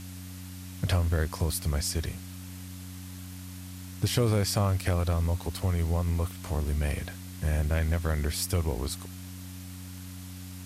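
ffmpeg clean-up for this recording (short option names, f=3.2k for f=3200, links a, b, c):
-af "bandreject=f=91.8:t=h:w=4,bandreject=f=183.6:t=h:w=4,bandreject=f=275.4:t=h:w=4,afwtdn=0.004"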